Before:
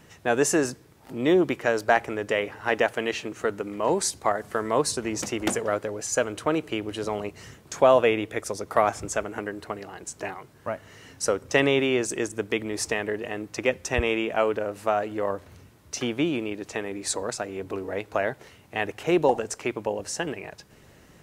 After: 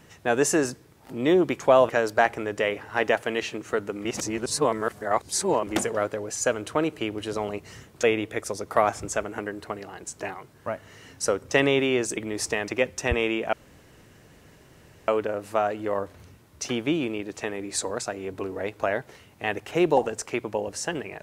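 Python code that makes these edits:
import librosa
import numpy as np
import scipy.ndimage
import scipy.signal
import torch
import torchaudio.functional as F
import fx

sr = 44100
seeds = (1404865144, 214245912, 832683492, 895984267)

y = fx.edit(x, sr, fx.reverse_span(start_s=3.76, length_s=1.62),
    fx.move(start_s=7.74, length_s=0.29, to_s=1.6),
    fx.cut(start_s=12.17, length_s=0.39),
    fx.cut(start_s=13.07, length_s=0.48),
    fx.insert_room_tone(at_s=14.4, length_s=1.55), tone=tone)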